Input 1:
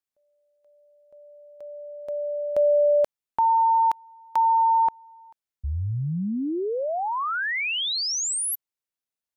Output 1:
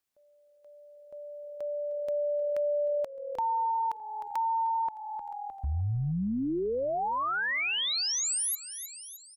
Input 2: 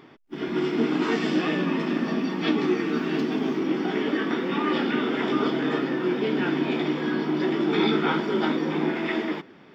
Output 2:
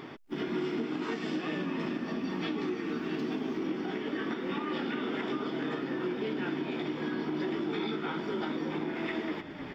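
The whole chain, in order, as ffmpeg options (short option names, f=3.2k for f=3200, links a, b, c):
-filter_complex "[0:a]asplit=5[a][b][c][d][e];[b]adelay=307,afreqshift=-40,volume=-17.5dB[f];[c]adelay=614,afreqshift=-80,volume=-24.8dB[g];[d]adelay=921,afreqshift=-120,volume=-32.2dB[h];[e]adelay=1228,afreqshift=-160,volume=-39.5dB[i];[a][f][g][h][i]amix=inputs=5:normalize=0,acompressor=threshold=-33dB:ratio=8:attack=0.31:release=730:knee=6:detection=peak,volume=6dB"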